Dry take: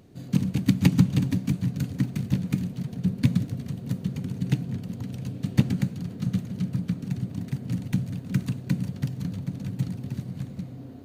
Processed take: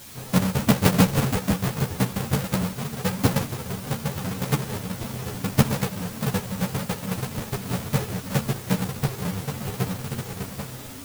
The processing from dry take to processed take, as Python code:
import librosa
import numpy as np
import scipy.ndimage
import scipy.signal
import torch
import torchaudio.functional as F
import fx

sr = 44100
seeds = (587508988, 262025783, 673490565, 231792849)

y = fx.halfwave_hold(x, sr)
y = fx.high_shelf(y, sr, hz=10000.0, db=9.5)
y = fx.dmg_noise_colour(y, sr, seeds[0], colour='white', level_db=-41.0)
y = fx.ensemble(y, sr)
y = F.gain(torch.from_numpy(y), 1.0).numpy()